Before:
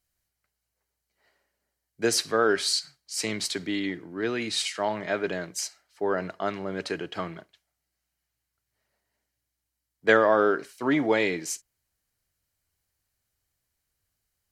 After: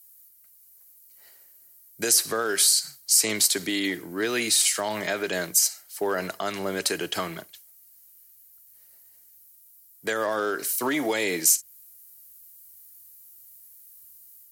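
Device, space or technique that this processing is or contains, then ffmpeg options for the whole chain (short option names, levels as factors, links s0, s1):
FM broadcast chain: -filter_complex "[0:a]highpass=55,dynaudnorm=f=360:g=3:m=1.41,acrossover=split=280|1800|6900[s0][s1][s2][s3];[s0]acompressor=threshold=0.01:ratio=4[s4];[s1]acompressor=threshold=0.0631:ratio=4[s5];[s2]acompressor=threshold=0.02:ratio=4[s6];[s3]acompressor=threshold=0.00891:ratio=4[s7];[s4][s5][s6][s7]amix=inputs=4:normalize=0,aemphasis=mode=production:type=50fm,alimiter=limit=0.112:level=0:latency=1:release=126,asoftclip=type=hard:threshold=0.1,lowpass=f=15000:w=0.5412,lowpass=f=15000:w=1.3066,aemphasis=mode=production:type=50fm,volume=1.33"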